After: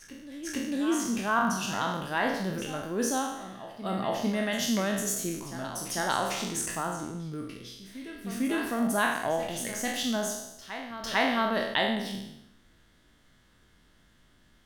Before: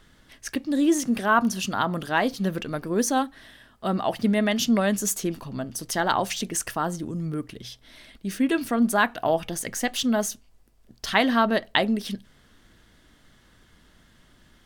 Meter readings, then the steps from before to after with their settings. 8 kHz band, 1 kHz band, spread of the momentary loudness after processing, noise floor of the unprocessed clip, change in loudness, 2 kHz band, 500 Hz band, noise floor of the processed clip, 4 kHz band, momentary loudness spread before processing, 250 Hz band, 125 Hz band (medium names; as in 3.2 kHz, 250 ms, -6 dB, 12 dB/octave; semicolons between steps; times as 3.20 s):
-3.0 dB, -4.5 dB, 13 LU, -58 dBFS, -5.0 dB, -3.5 dB, -4.5 dB, -62 dBFS, -3.5 dB, 12 LU, -6.0 dB, -5.5 dB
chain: spectral sustain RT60 0.85 s; reverse echo 450 ms -13 dB; trim -8 dB